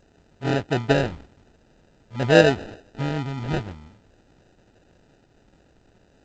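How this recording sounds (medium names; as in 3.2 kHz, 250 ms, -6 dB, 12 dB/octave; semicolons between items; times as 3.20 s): a quantiser's noise floor 10-bit, dither triangular; phasing stages 8, 0.47 Hz, lowest notch 510–1100 Hz; aliases and images of a low sample rate 1.1 kHz, jitter 0%; G.722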